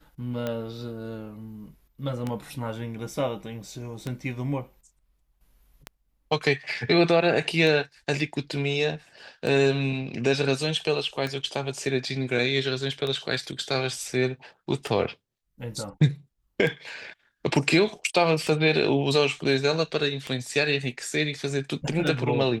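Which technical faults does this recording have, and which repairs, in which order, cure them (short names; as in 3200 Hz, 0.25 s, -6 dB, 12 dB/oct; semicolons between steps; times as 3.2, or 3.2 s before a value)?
tick 33 1/3 rpm -16 dBFS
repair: de-click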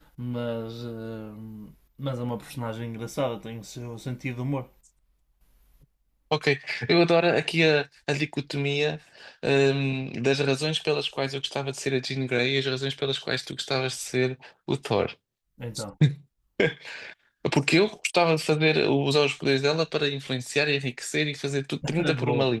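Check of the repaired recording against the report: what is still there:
none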